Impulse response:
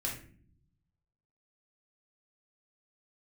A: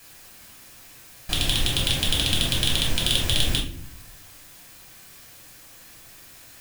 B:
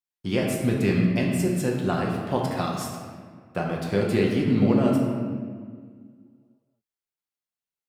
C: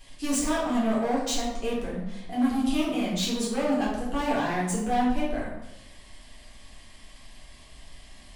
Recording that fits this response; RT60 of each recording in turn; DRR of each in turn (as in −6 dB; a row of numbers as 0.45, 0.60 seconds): A; non-exponential decay, 1.8 s, 0.90 s; −2.5, −2.0, −7.5 decibels